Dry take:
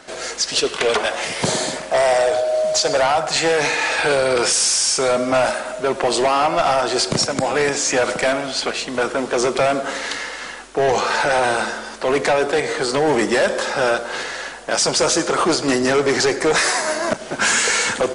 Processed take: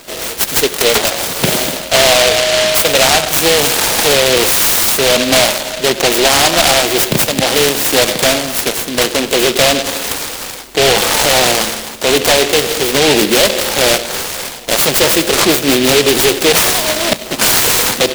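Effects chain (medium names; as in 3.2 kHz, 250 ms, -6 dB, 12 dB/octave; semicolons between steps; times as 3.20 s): delay time shaken by noise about 2.9 kHz, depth 0.21 ms; trim +6.5 dB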